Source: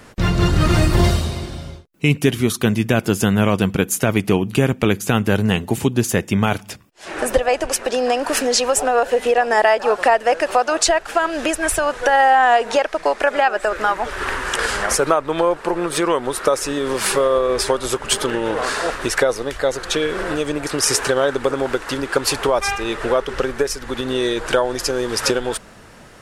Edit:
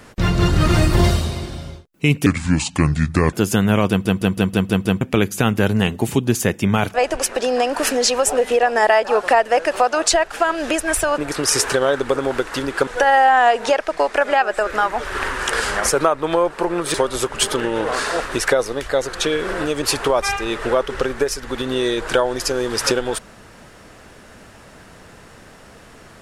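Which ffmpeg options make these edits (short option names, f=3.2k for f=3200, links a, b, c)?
-filter_complex "[0:a]asplit=16[a][b][c][d][e][f][g][h][i][j][k][l][m][n][o][p];[a]atrim=end=2.264[q];[b]atrim=start=2.26:end=3.02,asetpts=PTS-STARTPTS,asetrate=31311,aresample=44100[r];[c]atrim=start=3.016:end=3.742[s];[d]atrim=start=3.578:end=3.742[t];[e]atrim=start=3.578:end=3.742[u];[f]atrim=start=3.578:end=3.742[v];[g]atrim=start=3.578:end=3.742[w];[h]atrim=start=3.578:end=3.742[x];[i]atrim=start=3.578:end=3.742[y];[j]atrim=start=4.698:end=6.632[z];[k]atrim=start=7.438:end=8.872[aa];[l]atrim=start=9.118:end=11.932[ab];[m]atrim=start=20.528:end=22.222[ac];[n]atrim=start=11.928:end=16.002[ad];[o]atrim=start=17.638:end=20.532[ae];[p]atrim=start=22.218[af];[q][r]acrossfade=d=0.004:c1=hsin:c2=hsin[ag];[ag][s]acrossfade=d=0.004:c1=hsin:c2=hsin[ah];[ah][t]acrossfade=d=0.004:c1=hsin:c2=hsin[ai];[ai][u]acrossfade=d=0.004:c1=hsin:c2=hsin[aj];[aj][v]acrossfade=d=0.004:c1=hsin:c2=hsin[ak];[ak][w]acrossfade=d=0.004:c1=hsin:c2=hsin[al];[al][x]acrossfade=d=0.004:c1=hsin:c2=hsin[am];[am][y]acrossfade=d=0.004:c1=hsin:c2=hsin[an];[an][z]acrossfade=d=0.004:c1=hsin:c2=hsin[ao];[ao][aa]acrossfade=d=0.004:c1=hsin:c2=hsin[ap];[ap][ab]acrossfade=d=0.004:c1=hsin:c2=hsin[aq];[aq][ac]acrossfade=d=0.004:c1=hsin:c2=hsin[ar];[ar][ad]acrossfade=d=0.004:c1=hsin:c2=hsin[as];[as][ae]acrossfade=d=0.004:c1=hsin:c2=hsin[at];[at][af]acrossfade=d=0.004:c1=hsin:c2=hsin"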